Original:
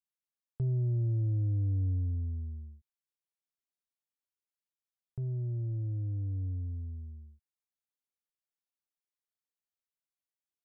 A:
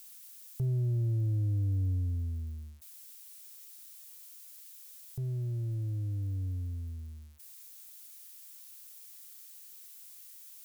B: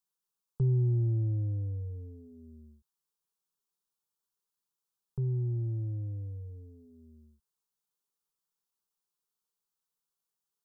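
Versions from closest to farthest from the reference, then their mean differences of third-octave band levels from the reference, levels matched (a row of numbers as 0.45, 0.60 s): B, A; 1.5, 3.0 dB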